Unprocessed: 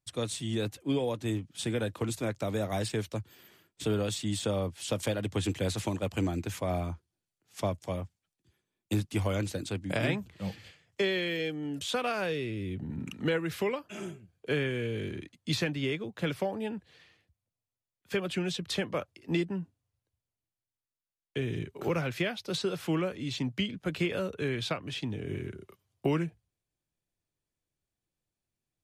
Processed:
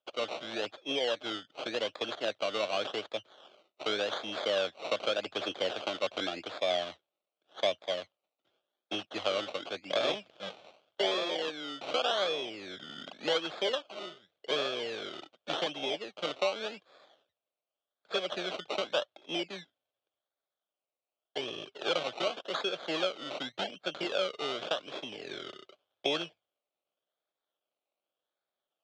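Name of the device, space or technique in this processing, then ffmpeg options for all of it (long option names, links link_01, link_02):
circuit-bent sampling toy: -af "acrusher=samples=21:mix=1:aa=0.000001:lfo=1:lforange=12.6:lforate=0.87,highpass=590,equalizer=frequency=600:width_type=q:width=4:gain=6,equalizer=frequency=960:width_type=q:width=4:gain=-8,equalizer=frequency=1900:width_type=q:width=4:gain=-7,equalizer=frequency=3300:width_type=q:width=4:gain=10,equalizer=frequency=5000:width_type=q:width=4:gain=-3,lowpass=frequency=5200:width=0.5412,lowpass=frequency=5200:width=1.3066,volume=3dB"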